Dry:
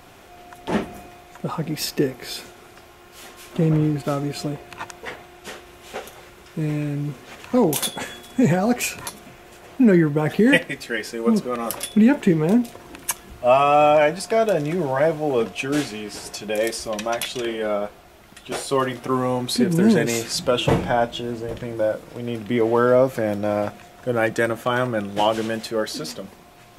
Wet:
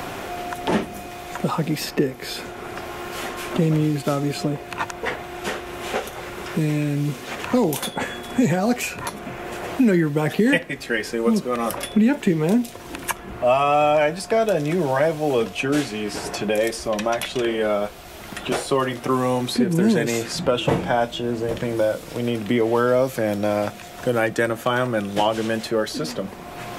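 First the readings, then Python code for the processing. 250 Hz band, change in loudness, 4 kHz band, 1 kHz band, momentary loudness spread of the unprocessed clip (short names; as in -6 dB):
-0.5 dB, -1.0 dB, 0.0 dB, 0.0 dB, 17 LU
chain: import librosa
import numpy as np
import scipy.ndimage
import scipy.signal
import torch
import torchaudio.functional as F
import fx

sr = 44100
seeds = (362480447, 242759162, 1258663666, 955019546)

y = fx.band_squash(x, sr, depth_pct=70)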